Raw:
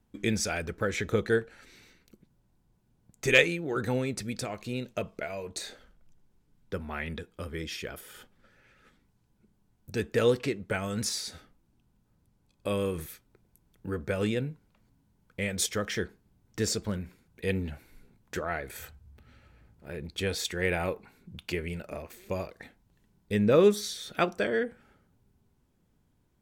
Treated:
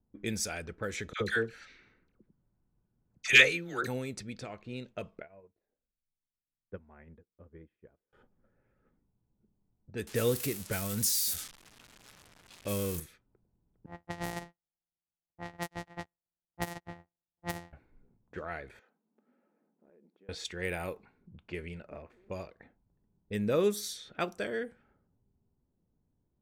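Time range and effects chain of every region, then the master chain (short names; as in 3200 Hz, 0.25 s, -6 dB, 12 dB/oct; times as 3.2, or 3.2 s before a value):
1.13–3.87 band shelf 2800 Hz +9 dB 2.7 oct + dispersion lows, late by 76 ms, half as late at 960 Hz
5.22–8.13 air absorption 330 m + notch 1300 Hz, Q 16 + upward expander 2.5:1, over -48 dBFS
10.07–13 switching spikes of -24 dBFS + low shelf 210 Hz +8 dB
13.86–17.73 sample sorter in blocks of 256 samples + small resonant body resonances 780/1900 Hz, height 13 dB, ringing for 25 ms + upward expander 2.5:1, over -44 dBFS
18.79–20.29 brick-wall FIR band-pass 180–7400 Hz + compressor 5:1, threshold -53 dBFS
whole clip: low-pass opened by the level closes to 770 Hz, open at -25.5 dBFS; high shelf 7600 Hz +11.5 dB; gain -7 dB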